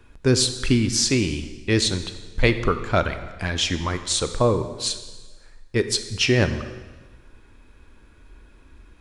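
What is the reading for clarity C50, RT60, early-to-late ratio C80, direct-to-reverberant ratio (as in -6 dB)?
10.5 dB, 1.3 s, 12.0 dB, 9.0 dB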